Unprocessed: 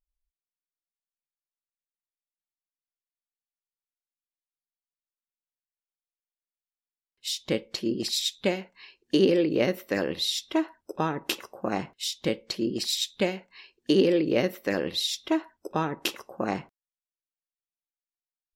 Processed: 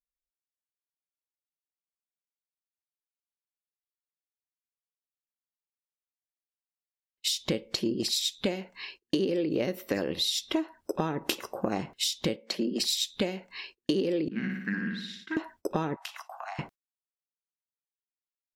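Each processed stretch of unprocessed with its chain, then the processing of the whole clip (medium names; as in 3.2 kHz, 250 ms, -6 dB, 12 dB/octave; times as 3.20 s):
12.36–12.80 s: rippled Chebyshev high-pass 170 Hz, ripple 6 dB + peaking EQ 1.9 kHz +4.5 dB 0.76 oct
14.28–15.37 s: two resonant band-passes 580 Hz, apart 2.9 oct + flutter echo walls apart 9.9 m, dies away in 0.73 s
15.96–16.59 s: steep high-pass 660 Hz 96 dB/octave + treble shelf 7 kHz -5 dB + compression 5:1, threshold -45 dBFS
whole clip: gate -56 dBFS, range -25 dB; dynamic bell 1.5 kHz, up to -4 dB, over -40 dBFS, Q 0.78; compression 6:1, threshold -34 dBFS; trim +8 dB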